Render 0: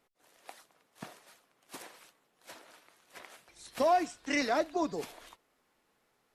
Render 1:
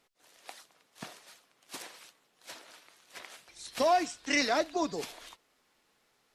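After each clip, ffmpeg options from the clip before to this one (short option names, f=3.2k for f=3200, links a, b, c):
-af "equalizer=f=4.7k:t=o:w=2.3:g=7"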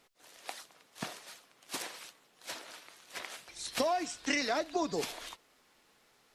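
-af "acompressor=threshold=-32dB:ratio=12,volume=4.5dB"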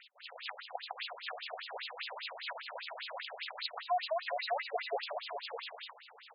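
-filter_complex "[0:a]aecho=1:1:260|416|509.6|565.8|599.5:0.631|0.398|0.251|0.158|0.1,acrossover=split=280[a][b];[b]acompressor=threshold=-50dB:ratio=3[c];[a][c]amix=inputs=2:normalize=0,afftfilt=real='re*between(b*sr/1024,580*pow(3700/580,0.5+0.5*sin(2*PI*5*pts/sr))/1.41,580*pow(3700/580,0.5+0.5*sin(2*PI*5*pts/sr))*1.41)':imag='im*between(b*sr/1024,580*pow(3700/580,0.5+0.5*sin(2*PI*5*pts/sr))/1.41,580*pow(3700/580,0.5+0.5*sin(2*PI*5*pts/sr))*1.41)':win_size=1024:overlap=0.75,volume=16dB"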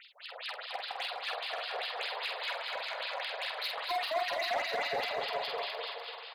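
-filter_complex "[0:a]asoftclip=type=hard:threshold=-34.5dB,asplit=2[a][b];[b]adelay=47,volume=-5dB[c];[a][c]amix=inputs=2:normalize=0,aecho=1:1:250|425|547.5|633.2|693.3:0.631|0.398|0.251|0.158|0.1,volume=3dB"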